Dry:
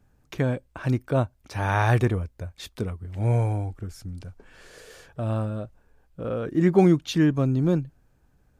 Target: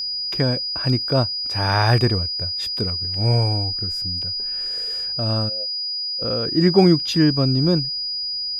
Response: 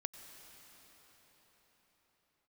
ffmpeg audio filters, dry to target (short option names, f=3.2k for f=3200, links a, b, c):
-filter_complex "[0:a]asplit=3[a][b][c];[a]afade=t=out:st=5.48:d=0.02[d];[b]asplit=3[e][f][g];[e]bandpass=f=530:t=q:w=8,volume=0dB[h];[f]bandpass=f=1.84k:t=q:w=8,volume=-6dB[i];[g]bandpass=f=2.48k:t=q:w=8,volume=-9dB[j];[h][i][j]amix=inputs=3:normalize=0,afade=t=in:st=5.48:d=0.02,afade=t=out:st=6.21:d=0.02[k];[c]afade=t=in:st=6.21:d=0.02[l];[d][k][l]amix=inputs=3:normalize=0,aeval=exprs='val(0)+0.0447*sin(2*PI*4900*n/s)':c=same,volume=3.5dB"